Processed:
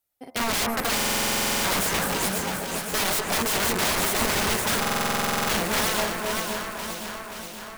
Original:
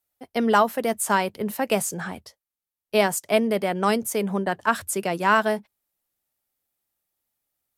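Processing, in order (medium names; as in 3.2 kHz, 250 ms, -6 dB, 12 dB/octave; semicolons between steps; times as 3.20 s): backward echo that repeats 256 ms, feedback 62%, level -3 dB; de-hum 76.26 Hz, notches 27; integer overflow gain 20 dB; on a send: echo whose repeats swap between lows and highs 265 ms, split 2.2 kHz, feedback 79%, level -4.5 dB; on the sum: buffer glitch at 0.95/4.80 s, samples 2048, times 14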